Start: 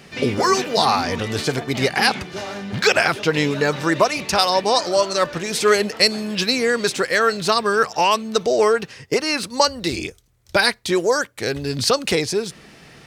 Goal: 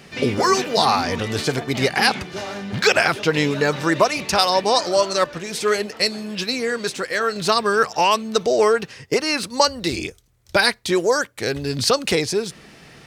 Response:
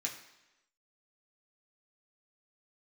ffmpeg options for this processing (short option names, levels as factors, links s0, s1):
-filter_complex "[0:a]asettb=1/sr,asplit=3[s0][s1][s2];[s0]atrim=end=5.244[s3];[s1]atrim=start=5.24:end=7.36,asetpts=PTS-STARTPTS,afade=t=in:d=0.004:c=qsin,afade=t=out:st=2.116:d=0.004:c=qsin,flanger=delay=2.5:depth=3.9:regen=-70:speed=1.6:shape=triangular[s4];[s2]atrim=start=7.356[s5];[s3][s4]acrossfade=d=0.004:c1=hsin:c2=qsin[s6];[s6][s5]acrossfade=d=0.004:c1=qsin:c2=hsin"